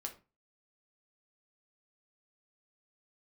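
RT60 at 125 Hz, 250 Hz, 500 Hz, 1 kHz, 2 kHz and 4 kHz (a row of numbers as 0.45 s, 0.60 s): 0.40 s, 0.35 s, 0.30 s, 0.30 s, 0.25 s, 0.25 s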